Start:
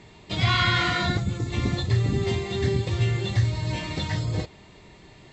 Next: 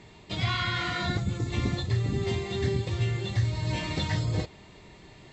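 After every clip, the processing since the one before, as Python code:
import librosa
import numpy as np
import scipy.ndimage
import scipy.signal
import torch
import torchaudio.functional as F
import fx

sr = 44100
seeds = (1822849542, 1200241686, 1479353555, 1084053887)

y = fx.rider(x, sr, range_db=4, speed_s=0.5)
y = y * 10.0 ** (-4.0 / 20.0)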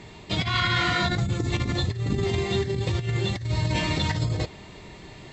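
y = fx.over_compress(x, sr, threshold_db=-29.0, ratio=-0.5)
y = y * 10.0 ** (5.0 / 20.0)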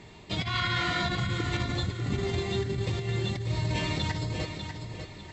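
y = fx.echo_feedback(x, sr, ms=596, feedback_pct=33, wet_db=-7.5)
y = y * 10.0 ** (-5.0 / 20.0)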